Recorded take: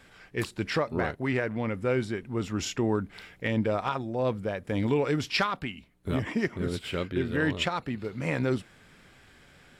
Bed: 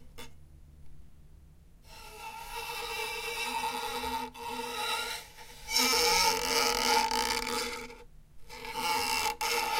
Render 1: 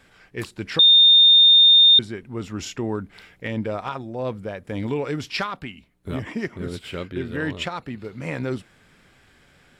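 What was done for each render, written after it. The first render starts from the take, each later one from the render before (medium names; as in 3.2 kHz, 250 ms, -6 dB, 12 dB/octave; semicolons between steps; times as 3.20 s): 0.79–1.99 s: bleep 3.64 kHz -9 dBFS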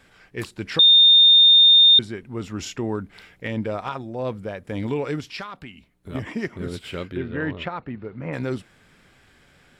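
5.20–6.15 s: compression 1.5:1, threshold -43 dBFS; 7.16–8.32 s: low-pass 3 kHz -> 1.6 kHz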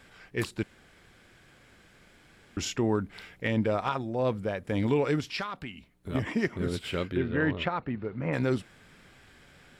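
0.63–2.57 s: room tone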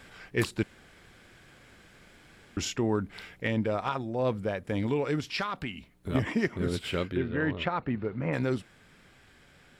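gain riding within 4 dB 0.5 s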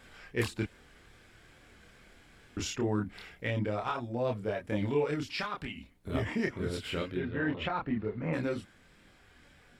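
chorus voices 6, 0.44 Hz, delay 27 ms, depth 2.4 ms; wow and flutter 26 cents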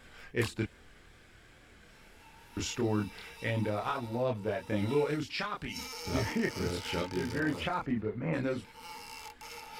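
add bed -16 dB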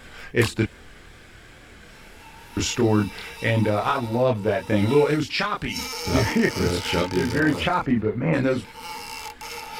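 trim +11 dB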